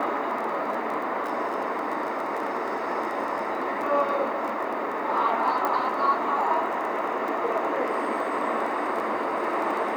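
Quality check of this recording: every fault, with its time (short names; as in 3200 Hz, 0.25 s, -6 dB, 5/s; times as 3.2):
crackle 16/s -31 dBFS
5.65 pop -13 dBFS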